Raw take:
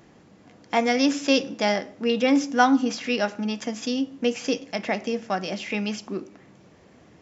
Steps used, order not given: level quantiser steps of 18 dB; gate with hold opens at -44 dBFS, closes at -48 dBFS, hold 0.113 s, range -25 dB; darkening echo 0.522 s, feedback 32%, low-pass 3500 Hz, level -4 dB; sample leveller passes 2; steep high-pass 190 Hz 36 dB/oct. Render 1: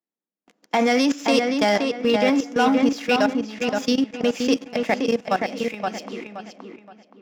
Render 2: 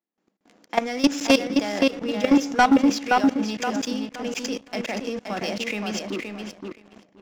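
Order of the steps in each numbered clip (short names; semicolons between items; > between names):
sample leveller > steep high-pass > level quantiser > gate with hold > darkening echo; steep high-pass > gate with hold > level quantiser > darkening echo > sample leveller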